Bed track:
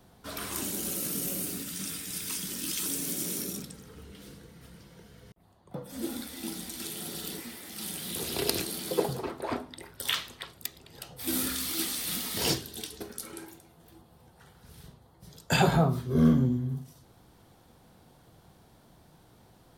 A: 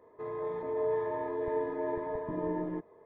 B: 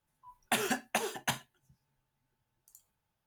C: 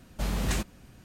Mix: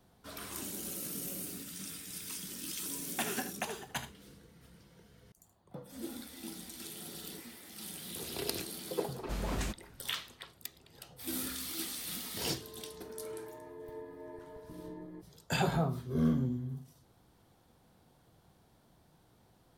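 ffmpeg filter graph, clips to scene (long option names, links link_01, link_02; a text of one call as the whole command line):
ffmpeg -i bed.wav -i cue0.wav -i cue1.wav -i cue2.wav -filter_complex "[0:a]volume=-7.5dB[link_01];[2:a]aecho=1:1:76:0.282[link_02];[1:a]equalizer=frequency=840:width_type=o:width=2.3:gain=-7[link_03];[link_02]atrim=end=3.26,asetpts=PTS-STARTPTS,volume=-6dB,afade=type=in:duration=0.004:curve=hsin,afade=type=out:start_time=3.256:duration=0.004:curve=hsin,adelay=2670[link_04];[3:a]atrim=end=1.04,asetpts=PTS-STARTPTS,volume=-7.5dB,afade=type=in:duration=0.004:curve=hsin,afade=type=out:start_time=1.036:duration=0.004:curve=hsin,adelay=9100[link_05];[link_03]atrim=end=3.05,asetpts=PTS-STARTPTS,volume=-9.5dB,afade=type=in:duration=0.004:curve=hsin,afade=type=out:start_time=3.046:duration=0.004:curve=hsin,adelay=12410[link_06];[link_01][link_04][link_05][link_06]amix=inputs=4:normalize=0" out.wav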